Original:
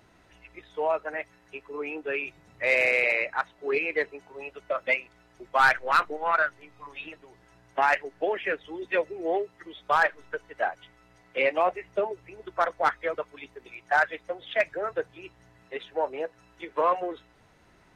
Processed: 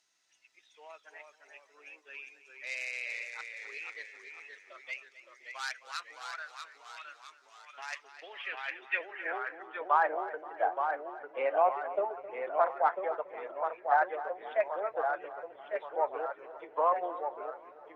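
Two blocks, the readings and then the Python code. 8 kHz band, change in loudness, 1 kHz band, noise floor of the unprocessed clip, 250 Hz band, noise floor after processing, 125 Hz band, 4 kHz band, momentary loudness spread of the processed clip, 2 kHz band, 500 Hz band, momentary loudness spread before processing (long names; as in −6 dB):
can't be measured, −6.5 dB, −4.0 dB, −60 dBFS, −13.5 dB, −65 dBFS, below −20 dB, −7.5 dB, 21 LU, −11.0 dB, −6.0 dB, 18 LU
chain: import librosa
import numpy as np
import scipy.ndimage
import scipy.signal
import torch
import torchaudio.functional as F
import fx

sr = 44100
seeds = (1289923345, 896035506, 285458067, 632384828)

y = fx.echo_feedback(x, sr, ms=263, feedback_pct=49, wet_db=-15.0)
y = fx.echo_pitch(y, sr, ms=285, semitones=-1, count=3, db_per_echo=-6.0)
y = fx.filter_sweep_bandpass(y, sr, from_hz=6100.0, to_hz=800.0, start_s=7.87, end_s=10.1, q=2.0)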